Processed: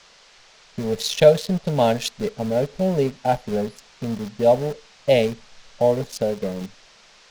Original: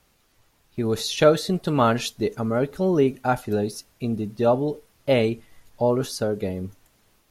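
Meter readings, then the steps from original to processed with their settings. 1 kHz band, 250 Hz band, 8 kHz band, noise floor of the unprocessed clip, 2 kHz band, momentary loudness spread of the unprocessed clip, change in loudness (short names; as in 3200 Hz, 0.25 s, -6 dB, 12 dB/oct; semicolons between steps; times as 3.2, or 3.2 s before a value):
+0.5 dB, -1.5 dB, +1.0 dB, -64 dBFS, -1.0 dB, 11 LU, +1.5 dB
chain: Wiener smoothing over 15 samples; fixed phaser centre 330 Hz, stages 6; dynamic EQ 270 Hz, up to -6 dB, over -36 dBFS, Q 0.94; band noise 390–5900 Hz -55 dBFS; in parallel at -6 dB: sample gate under -32.5 dBFS; on the sum: gain +3 dB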